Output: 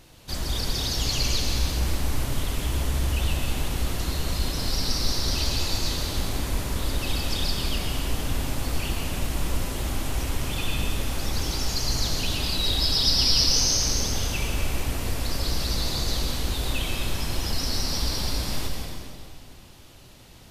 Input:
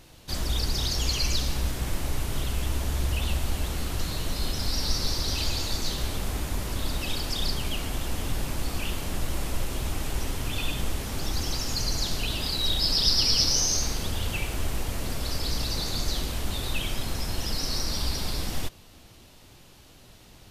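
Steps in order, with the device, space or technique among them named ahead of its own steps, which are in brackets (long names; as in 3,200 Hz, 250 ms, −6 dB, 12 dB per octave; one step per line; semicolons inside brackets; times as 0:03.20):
stairwell (convolution reverb RT60 2.2 s, pre-delay 116 ms, DRR 1.5 dB)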